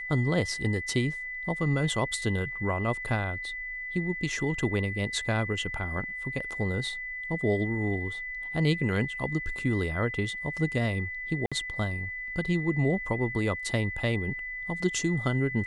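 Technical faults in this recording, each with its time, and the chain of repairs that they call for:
whistle 2,000 Hz −34 dBFS
0:11.46–0:11.52: drop-out 56 ms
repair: notch filter 2,000 Hz, Q 30
repair the gap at 0:11.46, 56 ms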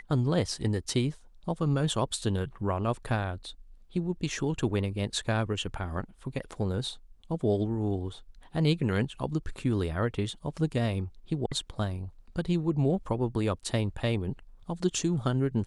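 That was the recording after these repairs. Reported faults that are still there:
none of them is left

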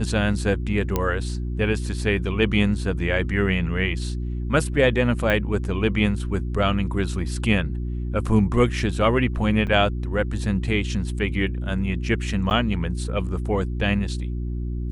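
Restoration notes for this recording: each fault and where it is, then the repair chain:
mains hum 60 Hz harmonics 6 −27 dBFS
0:00.96: click −8 dBFS
0:05.30: click −11 dBFS
0:09.67–0:09.68: drop-out 6.3 ms
0:12.50–0:12.51: drop-out 9.6 ms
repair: click removal
hum removal 60 Hz, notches 6
repair the gap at 0:09.67, 6.3 ms
repair the gap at 0:12.50, 9.6 ms

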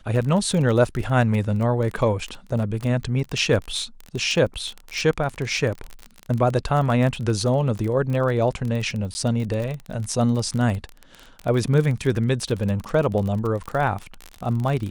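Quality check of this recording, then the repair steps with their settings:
surface crackle 29 per second −26 dBFS
0:09.14–0:09.15: drop-out 10 ms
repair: click removal
repair the gap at 0:09.14, 10 ms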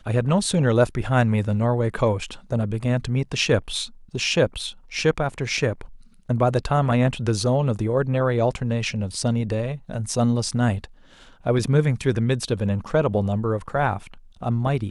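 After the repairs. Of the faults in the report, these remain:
none of them is left

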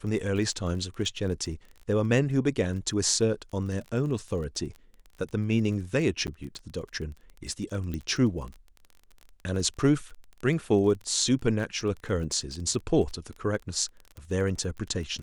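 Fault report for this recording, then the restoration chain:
surface crackle 21 per second −35 dBFS
0:06.27–0:06.28: drop-out 9.5 ms
0:07.94: click −21 dBFS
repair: click removal
repair the gap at 0:06.27, 9.5 ms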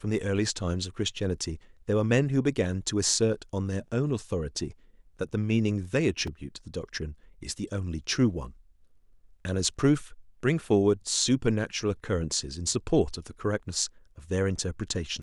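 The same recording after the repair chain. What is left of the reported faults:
none of them is left

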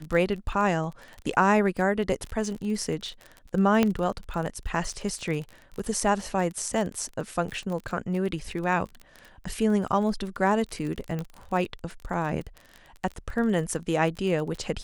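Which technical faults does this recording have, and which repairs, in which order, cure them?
surface crackle 29 per second −32 dBFS
0:03.83: click −9 dBFS
0:11.19: click −20 dBFS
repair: click removal

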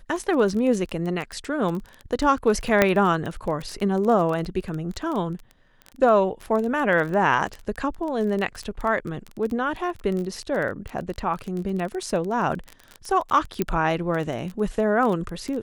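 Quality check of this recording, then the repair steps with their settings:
surface crackle 20 per second −27 dBFS
0:02.82: click −3 dBFS
0:13.62: click −9 dBFS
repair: click removal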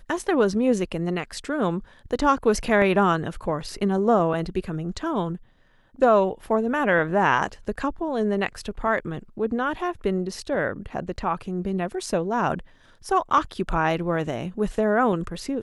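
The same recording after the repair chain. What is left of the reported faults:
0:02.82: click

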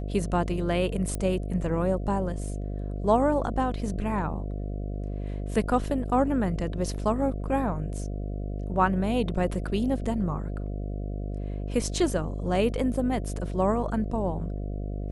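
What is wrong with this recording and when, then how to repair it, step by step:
mains buzz 50 Hz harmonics 14 −32 dBFS
0:01.15: click −18 dBFS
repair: click removal
hum removal 50 Hz, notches 14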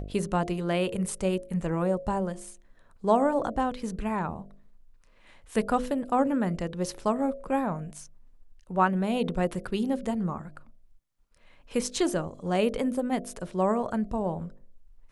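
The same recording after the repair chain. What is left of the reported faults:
none of them is left

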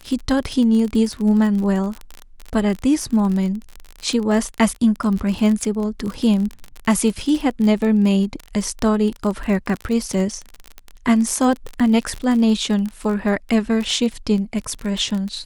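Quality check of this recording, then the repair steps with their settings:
surface crackle 31 per second −23 dBFS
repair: click removal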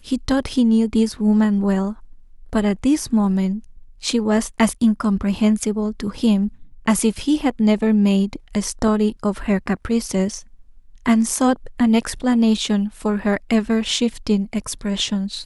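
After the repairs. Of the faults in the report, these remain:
none of them is left

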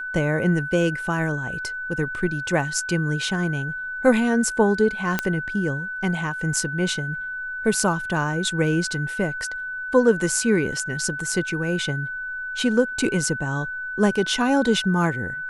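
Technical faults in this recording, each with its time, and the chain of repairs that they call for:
whistle 1,500 Hz −28 dBFS
0:05.19: click −6 dBFS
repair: click removal
notch filter 1,500 Hz, Q 30

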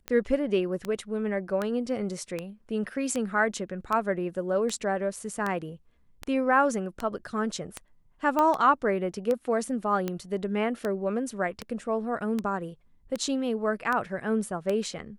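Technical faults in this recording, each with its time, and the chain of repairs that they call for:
scratch tick 78 rpm −16 dBFS
0:08.39: click −13 dBFS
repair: click removal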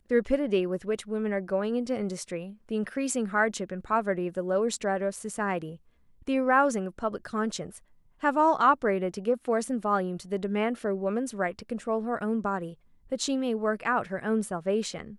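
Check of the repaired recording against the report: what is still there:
none of them is left

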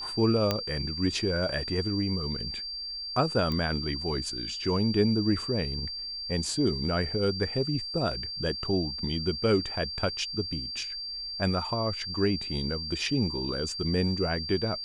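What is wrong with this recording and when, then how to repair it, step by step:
whistle 4,700 Hz −34 dBFS
0:00.51: click −11 dBFS
0:03.52: click −19 dBFS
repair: click removal
notch filter 4,700 Hz, Q 30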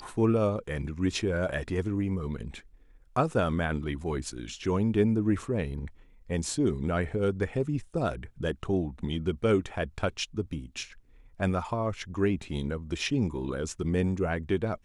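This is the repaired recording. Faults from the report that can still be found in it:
none of them is left

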